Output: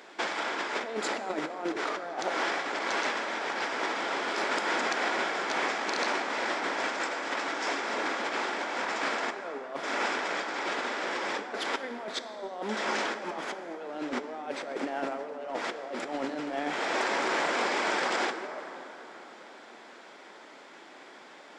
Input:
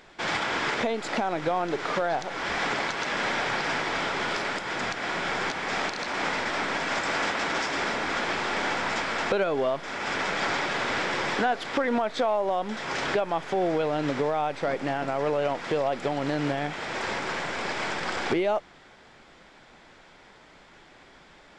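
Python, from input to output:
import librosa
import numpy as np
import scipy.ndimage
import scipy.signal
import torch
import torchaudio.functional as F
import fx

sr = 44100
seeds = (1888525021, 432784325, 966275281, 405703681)

y = scipy.signal.sosfilt(scipy.signal.butter(4, 250.0, 'highpass', fs=sr, output='sos'), x)
y = fx.peak_eq(y, sr, hz=3000.0, db=-2.5, octaves=2.1)
y = fx.over_compress(y, sr, threshold_db=-32.0, ratio=-0.5)
y = fx.rev_plate(y, sr, seeds[0], rt60_s=4.1, hf_ratio=0.45, predelay_ms=0, drr_db=8.0)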